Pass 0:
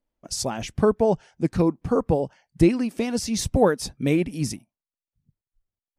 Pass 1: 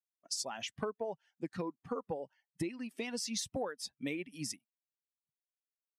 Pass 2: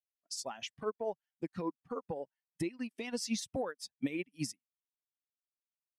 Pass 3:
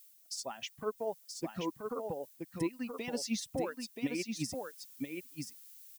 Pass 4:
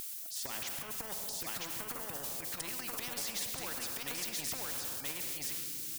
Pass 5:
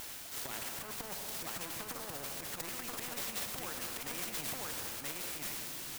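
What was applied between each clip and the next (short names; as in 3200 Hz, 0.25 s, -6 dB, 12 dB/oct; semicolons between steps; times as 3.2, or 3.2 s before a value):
per-bin expansion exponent 1.5; weighting filter A; compressor 10:1, threshold -33 dBFS, peak gain reduction 16.5 dB; gain -1 dB
limiter -31 dBFS, peak gain reduction 9.5 dB; upward expander 2.5:1, over -55 dBFS; gain +8 dB
added noise violet -63 dBFS; reverse; upward compressor, threshold -46 dBFS; reverse; echo 0.978 s -5 dB
transient shaper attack -11 dB, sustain +8 dB; shoebox room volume 1000 m³, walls mixed, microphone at 0.45 m; spectral compressor 4:1
clock jitter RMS 0.064 ms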